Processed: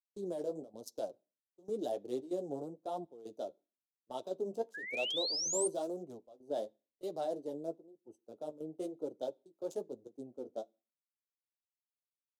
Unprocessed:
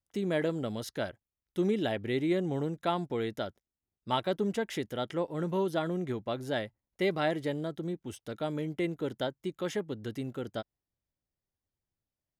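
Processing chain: local Wiener filter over 25 samples; high-pass 480 Hz 12 dB/octave; gate -52 dBFS, range -11 dB; FFT filter 660 Hz 0 dB, 2 kHz -29 dB, 6.1 kHz +4 dB; peak limiter -31 dBFS, peak gain reduction 7.5 dB; trance gate ".xxxxx.xxxxxxx." 143 bpm -12 dB; flange 0.99 Hz, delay 5.7 ms, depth 8.7 ms, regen -28%; painted sound rise, 4.74–5.68 s, 1.6–9.1 kHz -47 dBFS; on a send at -18 dB: reverberation RT60 0.45 s, pre-delay 3 ms; on the sum: three bands expanded up and down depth 70%; trim +5 dB

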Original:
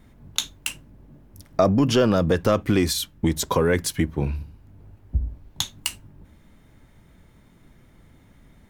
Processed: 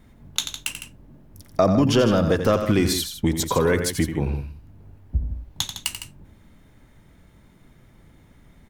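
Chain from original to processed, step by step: loudspeakers at several distances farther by 30 m -9 dB, 54 m -11 dB

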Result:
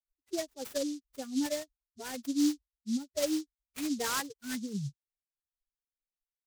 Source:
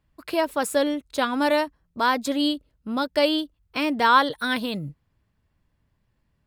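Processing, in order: expander on every frequency bin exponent 3; ten-band graphic EQ 125 Hz +8 dB, 250 Hz +8 dB, 500 Hz +4 dB, 1 kHz -10 dB, 2 kHz +8 dB, 4 kHz -11 dB; delay time shaken by noise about 5.2 kHz, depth 0.1 ms; trim -9 dB

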